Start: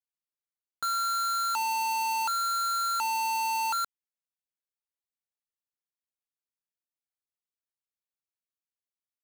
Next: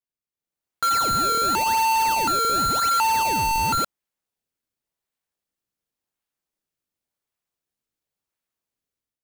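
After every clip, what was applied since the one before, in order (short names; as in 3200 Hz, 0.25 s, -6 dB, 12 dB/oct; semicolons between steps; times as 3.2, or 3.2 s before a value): in parallel at -8 dB: decimation with a swept rate 27×, swing 160% 0.92 Hz; on the sum: AGC gain up to 10 dB; gain -3.5 dB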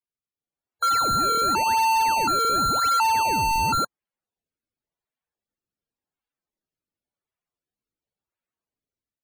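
high shelf 7300 Hz -3.5 dB; loudest bins only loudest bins 64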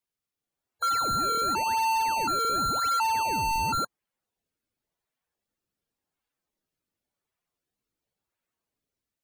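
limiter -27.5 dBFS, peak gain reduction 10.5 dB; gain +4.5 dB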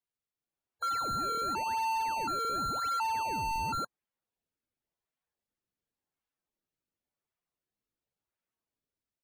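high shelf 4400 Hz -5.5 dB; gain -5.5 dB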